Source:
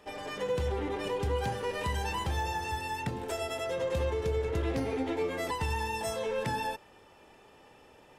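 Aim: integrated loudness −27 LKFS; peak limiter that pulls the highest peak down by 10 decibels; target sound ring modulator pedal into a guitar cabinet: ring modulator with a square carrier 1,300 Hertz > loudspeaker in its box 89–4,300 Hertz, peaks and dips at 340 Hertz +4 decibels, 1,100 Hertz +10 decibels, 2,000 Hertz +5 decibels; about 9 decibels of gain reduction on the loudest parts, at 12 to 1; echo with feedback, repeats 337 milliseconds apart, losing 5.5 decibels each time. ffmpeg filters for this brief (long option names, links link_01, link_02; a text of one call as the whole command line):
ffmpeg -i in.wav -af "acompressor=threshold=-36dB:ratio=12,alimiter=level_in=13dB:limit=-24dB:level=0:latency=1,volume=-13dB,aecho=1:1:337|674|1011|1348|1685|2022|2359:0.531|0.281|0.149|0.079|0.0419|0.0222|0.0118,aeval=exprs='val(0)*sgn(sin(2*PI*1300*n/s))':channel_layout=same,highpass=89,equalizer=frequency=340:width_type=q:width=4:gain=4,equalizer=frequency=1100:width_type=q:width=4:gain=10,equalizer=frequency=2000:width_type=q:width=4:gain=5,lowpass=frequency=4300:width=0.5412,lowpass=frequency=4300:width=1.3066,volume=12dB" out.wav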